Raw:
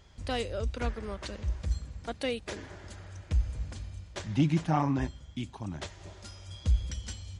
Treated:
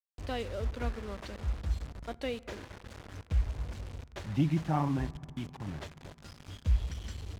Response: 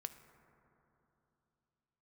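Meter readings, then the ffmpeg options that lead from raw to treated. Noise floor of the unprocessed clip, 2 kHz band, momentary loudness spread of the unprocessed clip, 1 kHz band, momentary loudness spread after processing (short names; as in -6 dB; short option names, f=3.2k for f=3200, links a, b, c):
-52 dBFS, -3.5 dB, 17 LU, -3.0 dB, 17 LU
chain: -filter_complex "[0:a]acrusher=bits=6:mix=0:aa=0.000001,aemphasis=mode=reproduction:type=50fm,asplit=2[a][b];[1:a]atrim=start_sample=2205,lowshelf=f=140:g=7[c];[b][c]afir=irnorm=-1:irlink=0,volume=-4dB[d];[a][d]amix=inputs=2:normalize=0,volume=-6.5dB"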